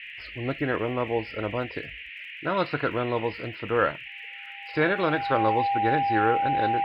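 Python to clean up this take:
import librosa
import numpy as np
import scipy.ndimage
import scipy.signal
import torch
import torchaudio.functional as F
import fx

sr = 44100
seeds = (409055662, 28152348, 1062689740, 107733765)

y = fx.fix_declick_ar(x, sr, threshold=6.5)
y = fx.notch(y, sr, hz=800.0, q=30.0)
y = fx.noise_reduce(y, sr, print_start_s=4.08, print_end_s=4.58, reduce_db=30.0)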